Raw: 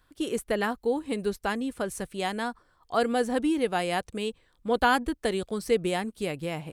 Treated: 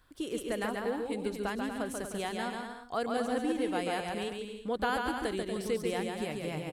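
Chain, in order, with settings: compression 1.5:1, threshold -44 dBFS, peak gain reduction 9.5 dB; bouncing-ball echo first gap 140 ms, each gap 0.7×, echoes 5

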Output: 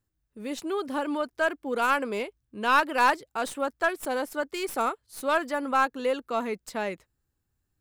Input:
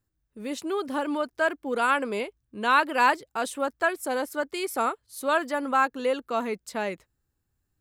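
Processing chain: tracing distortion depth 0.044 ms; trim -1 dB

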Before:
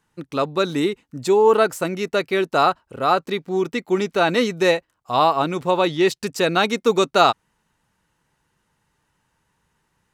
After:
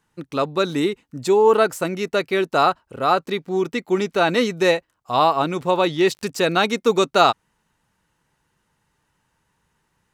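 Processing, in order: 5.64–6.54 s: crackle 25 per s -32 dBFS

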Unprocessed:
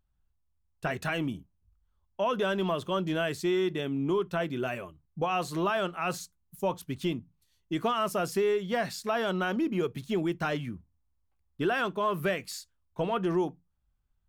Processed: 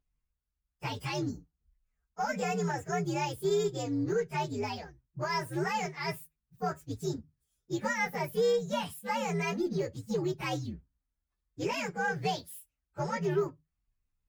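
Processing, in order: frequency axis rescaled in octaves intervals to 128%; Chebyshev shaper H 6 -37 dB, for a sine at -18 dBFS

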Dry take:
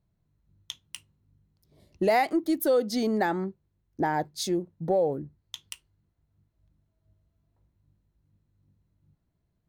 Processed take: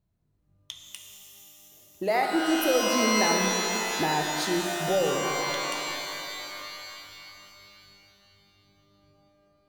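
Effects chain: 0.84–2.22 s: bass shelf 260 Hz -10.5 dB; pitch-shifted reverb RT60 3.2 s, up +12 st, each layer -2 dB, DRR 2.5 dB; trim -2 dB

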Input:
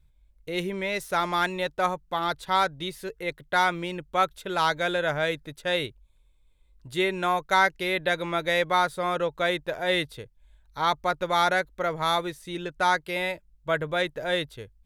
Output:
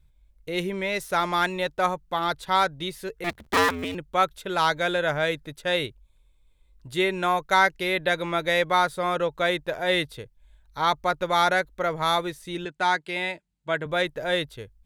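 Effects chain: 3.24–3.95 s: cycle switcher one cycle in 2, inverted; 12.65–13.86 s: cabinet simulation 170–9100 Hz, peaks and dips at 530 Hz -7 dB, 1.2 kHz -5 dB, 5.6 kHz -6 dB; trim +1.5 dB

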